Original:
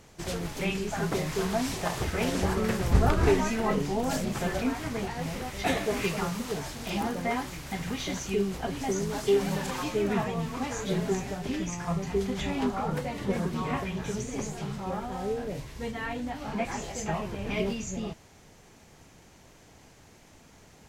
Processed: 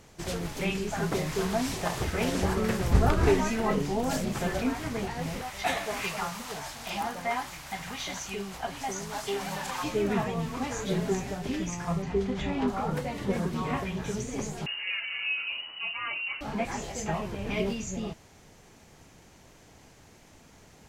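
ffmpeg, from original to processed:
-filter_complex "[0:a]asettb=1/sr,asplit=3[s0][s1][s2];[s0]atrim=end=5.414[s3];[s1]atrim=start=5.41:end=9.84,asetpts=PTS-STARTPTS,afade=t=in:d=0.004:c=qsin,afade=t=out:st=4.426:d=0.004:c=qsin,lowshelf=f=560:t=q:w=1.5:g=-8[s4];[s2]atrim=start=9.836[s5];[s3][s4]acrossfade=d=0.004:c1=hsin:c2=qsin[s6];[s6][s5]acrossfade=d=0.004:c1=qsin:c2=hsin,asettb=1/sr,asplit=3[s7][s8][s9];[s7]atrim=end=12.024[s10];[s8]atrim=start=12.02:end=12.68,asetpts=PTS-STARTPTS,afade=t=in:d=0.004:c=qsin,afade=t=out:st=0.656:d=0.004:c=qsin,aemphasis=mode=reproduction:type=50fm[s11];[s9]atrim=start=12.676[s12];[s10][s11]acrossfade=d=0.004:c1=hsin:c2=qsin[s13];[s13][s12]acrossfade=d=0.004:c1=qsin:c2=hsin,asettb=1/sr,asplit=3[s14][s15][s16];[s14]atrim=end=14.664[s17];[s15]atrim=start=14.66:end=16.41,asetpts=PTS-STARTPTS,afade=t=in:d=0.004:c=qsin,afade=t=out:st=1.746:d=0.004:c=qsin,lowpass=f=2600:t=q:w=0.5098,lowpass=f=2600:t=q:w=0.6013,lowpass=f=2600:t=q:w=0.9,lowpass=f=2600:t=q:w=2.563,afreqshift=-3000[s18];[s16]atrim=start=16.406[s19];[s17][s18]acrossfade=d=0.004:c1=hsin:c2=qsin[s20];[s20][s19]acrossfade=d=0.004:c1=qsin:c2=hsin"

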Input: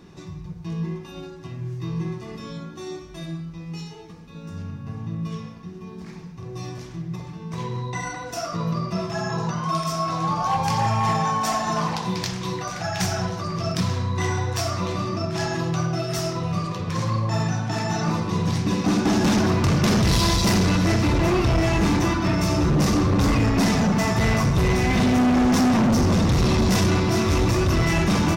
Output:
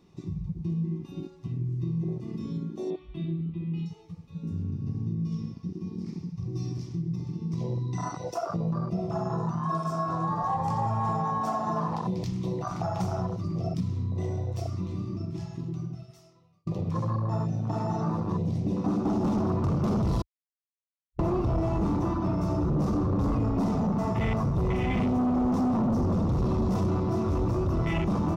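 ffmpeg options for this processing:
-filter_complex "[0:a]asettb=1/sr,asplit=3[s0][s1][s2];[s0]atrim=end=2.904[s3];[s1]atrim=start=2.9:end=3.86,asetpts=PTS-STARTPTS,afade=t=in:d=0.004:c=qsin,afade=t=out:st=0.956:d=0.004:c=qsin,highshelf=f=4400:t=q:w=3:g=-12.5[s4];[s2]atrim=start=3.856[s5];[s3][s4]acrossfade=d=0.004:c1=hsin:c2=qsin[s6];[s6][s5]acrossfade=d=0.004:c1=qsin:c2=hsin,asettb=1/sr,asplit=3[s7][s8][s9];[s7]atrim=end=4.724[s10];[s8]atrim=start=4.72:end=8.34,asetpts=PTS-STARTPTS,afade=t=in:d=0.004:c=qsin,afade=t=out:st=3.616:d=0.004:c=qsin,equalizer=f=5200:t=o:w=0.56:g=10[s11];[s9]atrim=start=8.336[s12];[s10][s11]acrossfade=d=0.004:c1=hsin:c2=qsin[s13];[s13][s12]acrossfade=d=0.004:c1=qsin:c2=hsin,asettb=1/sr,asplit=3[s14][s15][s16];[s14]atrim=end=9.344[s17];[s15]atrim=start=9.34:end=11.2,asetpts=PTS-STARTPTS,afade=t=in:d=0.004:c=qsin,afade=t=out:st=1.856:d=0.004:c=qsin,equalizer=f=7700:t=o:w=0.35:g=6.5[s18];[s16]atrim=start=11.196[s19];[s17][s18]acrossfade=d=0.004:c1=hsin:c2=qsin[s20];[s20][s19]acrossfade=d=0.004:c1=qsin:c2=hsin,asplit=4[s21][s22][s23][s24];[s21]atrim=end=16.67,asetpts=PTS-STARTPTS,afade=t=out:st=13.03:d=3.64[s25];[s22]atrim=start=16.67:end=20.22,asetpts=PTS-STARTPTS,afade=t=in:d=0.004:c=hsin,afade=t=out:st=3.546:d=0.004:c=hsin[s26];[s23]atrim=start=20.22:end=21.19,asetpts=PTS-STARTPTS,volume=0[s27];[s24]atrim=start=21.19,asetpts=PTS-STARTPTS,afade=t=in:d=0.004:c=hsin[s28];[s25][s26][s27][s28]concat=n=4:v=0:a=1,afwtdn=0.0562,equalizer=f=1600:t=o:w=0.24:g=-13.5,acompressor=threshold=0.0224:ratio=3,volume=1.68"

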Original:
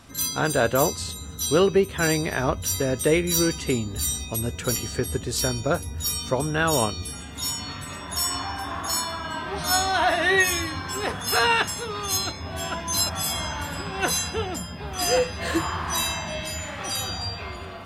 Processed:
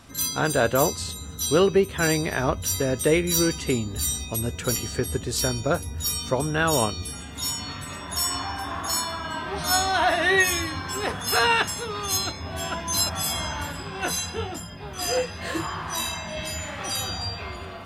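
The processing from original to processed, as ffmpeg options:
-filter_complex "[0:a]asettb=1/sr,asplit=3[s0][s1][s2];[s0]atrim=end=13.724[s3];[s1]atrim=start=13.72:end=16.37,asetpts=PTS-STARTPTS,afade=t=in:d=0.004:c=qsin,afade=t=out:st=2.646:d=0.004:c=qsin,flanger=delay=18.5:depth=4.8:speed=1[s4];[s2]atrim=start=16.366[s5];[s3][s4]acrossfade=d=0.004:c1=hsin:c2=qsin[s6];[s6][s5]acrossfade=d=0.004:c1=qsin:c2=hsin"

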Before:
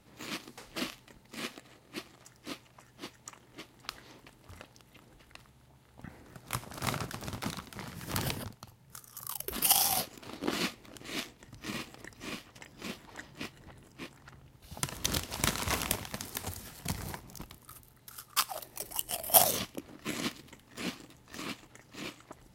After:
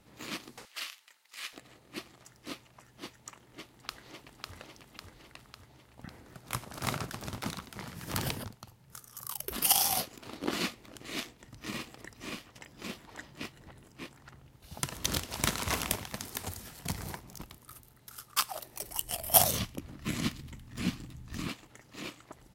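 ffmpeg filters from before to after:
-filter_complex "[0:a]asettb=1/sr,asplit=3[s0][s1][s2];[s0]atrim=end=0.654[s3];[s1]atrim=start=0.65:end=1.53,asetpts=PTS-STARTPTS,afade=t=in:d=0.004:c=qsin,afade=t=out:st=0.876:d=0.004:c=qsin,highpass=1400[s4];[s2]atrim=start=1.526[s5];[s3][s4]acrossfade=d=0.004:c1=hsin:c2=qsin[s6];[s6][s5]acrossfade=d=0.004:c1=qsin:c2=hsin,asplit=2[s7][s8];[s8]afade=t=in:st=3.45:d=0.01,afade=t=out:st=4.55:d=0.01,aecho=0:1:550|1100|1650|2200|2750|3300|3850|4400|4950:0.707946|0.424767|0.25486|0.152916|0.0917498|0.0550499|0.0330299|0.019818|0.0118908[s9];[s7][s9]amix=inputs=2:normalize=0,asettb=1/sr,asplit=3[s10][s11][s12];[s10]atrim=end=18.734[s13];[s11]atrim=start=18.73:end=21.48,asetpts=PTS-STARTPTS,afade=t=in:d=0.004:c=qsin,afade=t=out:st=2.746:d=0.004:c=qsin,asubboost=boost=11.5:cutoff=170[s14];[s12]atrim=start=21.476[s15];[s13][s14]acrossfade=d=0.004:c1=hsin:c2=qsin[s16];[s16][s15]acrossfade=d=0.004:c1=qsin:c2=hsin"

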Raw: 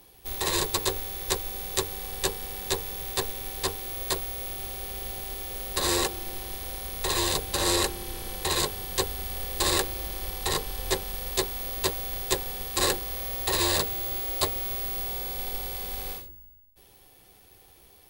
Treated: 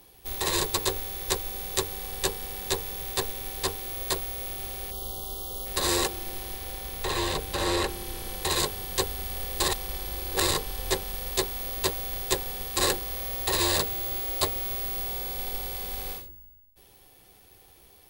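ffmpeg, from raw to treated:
-filter_complex "[0:a]asplit=3[s0][s1][s2];[s0]afade=t=out:st=4.9:d=0.02[s3];[s1]asuperstop=centerf=2000:order=12:qfactor=1.3,afade=t=in:st=4.9:d=0.02,afade=t=out:st=5.65:d=0.02[s4];[s2]afade=t=in:st=5.65:d=0.02[s5];[s3][s4][s5]amix=inputs=3:normalize=0,asettb=1/sr,asplit=3[s6][s7][s8];[s6]atrim=end=6.534[s9];[s7]atrim=start=6.53:end=7.89,asetpts=PTS-STARTPTS,afade=t=in:d=0.004:c=qsin,afade=t=out:st=1.356:d=0.004:c=qsin,acrossover=split=3700[s10][s11];[s11]acompressor=threshold=0.0178:ratio=4:attack=1:release=60[s12];[s10][s12]amix=inputs=2:normalize=0[s13];[s8]atrim=start=7.886[s14];[s9][s13]acrossfade=d=0.004:c1=hsin:c2=qsin[s15];[s15][s14]acrossfade=d=0.004:c1=qsin:c2=hsin,asplit=3[s16][s17][s18];[s16]atrim=end=9.682[s19];[s17]atrim=start=9.678:end=10.512,asetpts=PTS-STARTPTS,areverse[s20];[s18]atrim=start=10.508[s21];[s19][s20]acrossfade=d=0.004:c1=hsin:c2=hsin[s22];[s22][s21]acrossfade=d=0.004:c1=hsin:c2=hsin"

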